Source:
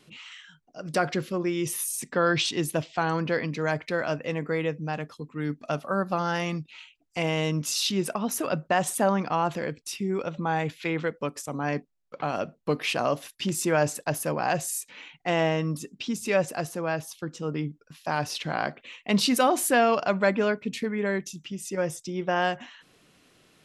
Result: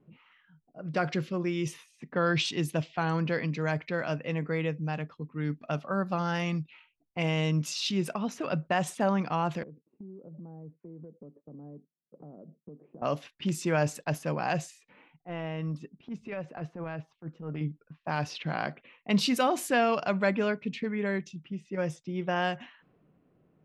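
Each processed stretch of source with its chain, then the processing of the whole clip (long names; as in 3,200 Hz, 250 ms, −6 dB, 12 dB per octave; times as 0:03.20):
0:09.63–0:13.02: flat-topped band-pass 270 Hz, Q 0.81 + downward compressor 8 to 1, threshold −40 dBFS
0:15.16–0:17.61: transient designer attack −12 dB, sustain −4 dB + downward compressor 4 to 1, threshold −29 dBFS
whole clip: graphic EQ with 15 bands 160 Hz +6 dB, 2,500 Hz +3 dB, 10,000 Hz −6 dB; low-pass that shuts in the quiet parts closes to 690 Hz, open at −21 dBFS; level −4.5 dB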